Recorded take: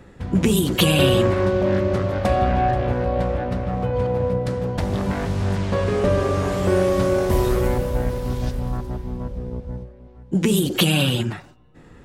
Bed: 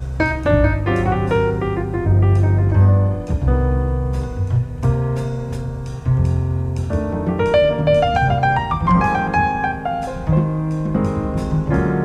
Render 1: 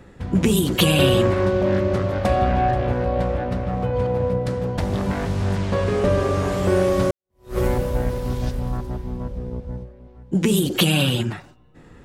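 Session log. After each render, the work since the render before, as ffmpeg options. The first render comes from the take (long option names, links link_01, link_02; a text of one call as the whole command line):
ffmpeg -i in.wav -filter_complex "[0:a]asplit=2[link_01][link_02];[link_01]atrim=end=7.11,asetpts=PTS-STARTPTS,afade=type=out:start_time=7.106:duration=0.004:curve=hsin[link_03];[link_02]atrim=start=7.11,asetpts=PTS-STARTPTS,afade=type=in:duration=0.47:curve=exp[link_04];[link_03][link_04]concat=n=2:v=0:a=1" out.wav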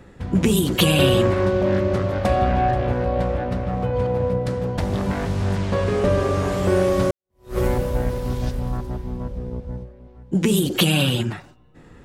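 ffmpeg -i in.wav -af anull out.wav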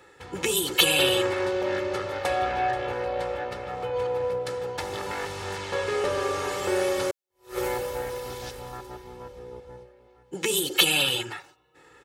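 ffmpeg -i in.wav -af "highpass=frequency=1100:poles=1,aecho=1:1:2.3:0.71" out.wav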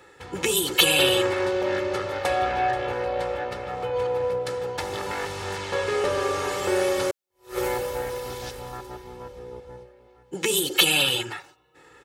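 ffmpeg -i in.wav -af "volume=2dB,alimiter=limit=-3dB:level=0:latency=1" out.wav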